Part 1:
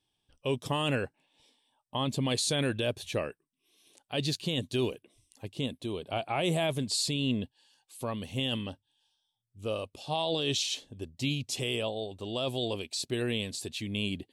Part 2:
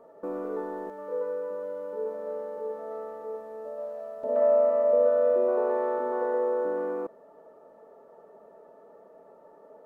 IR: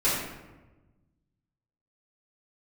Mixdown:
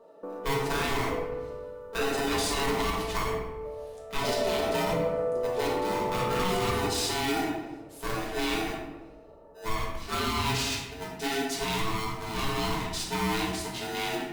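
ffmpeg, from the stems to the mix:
-filter_complex "[0:a]aeval=exprs='val(0)*sgn(sin(2*PI*550*n/s))':channel_layout=same,volume=-8dB,asplit=2[link_01][link_02];[link_02]volume=-3.5dB[link_03];[1:a]volume=-5dB,asplit=2[link_04][link_05];[link_05]volume=-13.5dB[link_06];[2:a]atrim=start_sample=2205[link_07];[link_03][link_06]amix=inputs=2:normalize=0[link_08];[link_08][link_07]afir=irnorm=-1:irlink=0[link_09];[link_01][link_04][link_09]amix=inputs=3:normalize=0,alimiter=limit=-18.5dB:level=0:latency=1:release=43"

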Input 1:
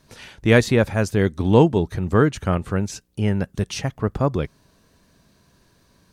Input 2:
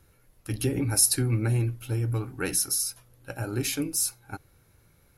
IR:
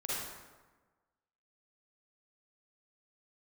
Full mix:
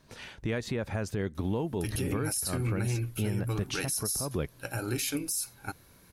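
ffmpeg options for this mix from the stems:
-filter_complex "[0:a]acompressor=threshold=-18dB:ratio=6,volume=-3dB[link_01];[1:a]highshelf=frequency=2300:gain=10.5,adelay=1350,volume=-1dB[link_02];[link_01][link_02]amix=inputs=2:normalize=0,bass=frequency=250:gain=-1,treble=frequency=4000:gain=-3,alimiter=limit=-22dB:level=0:latency=1:release=113"

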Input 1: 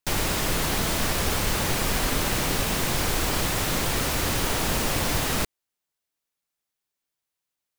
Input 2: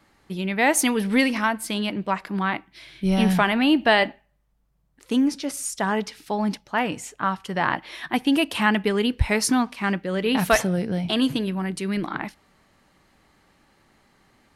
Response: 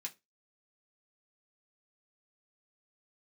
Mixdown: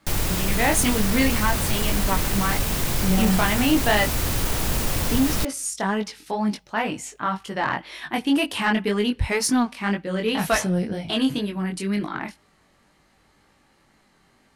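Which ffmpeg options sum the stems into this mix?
-filter_complex "[0:a]lowshelf=frequency=160:gain=9,volume=-2.5dB[link_01];[1:a]lowpass=11000,flanger=delay=19:depth=3.7:speed=2,volume=2.5dB[link_02];[link_01][link_02]amix=inputs=2:normalize=0,highshelf=frequency=8300:gain=6.5,asoftclip=type=tanh:threshold=-11dB"

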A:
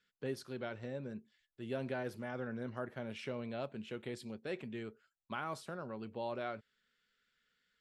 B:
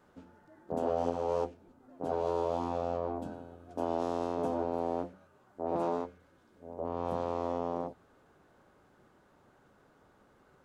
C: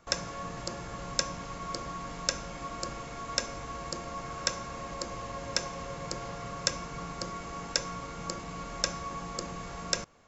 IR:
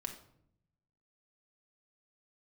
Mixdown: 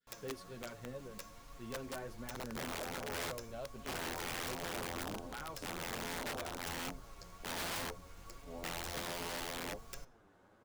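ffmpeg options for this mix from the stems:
-filter_complex "[0:a]volume=-2.5dB,asplit=3[link_01][link_02][link_03];[link_02]volume=-19dB[link_04];[1:a]adelay=1850,volume=1dB[link_05];[2:a]asubboost=boost=9.5:cutoff=65,acrusher=bits=6:mix=0:aa=0.000001,volume=-16.5dB,asplit=2[link_06][link_07];[link_07]volume=-9.5dB[link_08];[link_03]apad=whole_len=551078[link_09];[link_05][link_09]sidechaincompress=threshold=-45dB:ratio=8:attack=12:release=445[link_10];[3:a]atrim=start_sample=2205[link_11];[link_04][link_08]amix=inputs=2:normalize=0[link_12];[link_12][link_11]afir=irnorm=-1:irlink=0[link_13];[link_01][link_10][link_06][link_13]amix=inputs=4:normalize=0,flanger=delay=6.8:depth=4.5:regen=6:speed=1.3:shape=triangular,adynamicequalizer=threshold=0.00141:dfrequency=2400:dqfactor=1:tfrequency=2400:tqfactor=1:attack=5:release=100:ratio=0.375:range=2.5:mode=cutabove:tftype=bell,aeval=exprs='(mod(53.1*val(0)+1,2)-1)/53.1':channel_layout=same"

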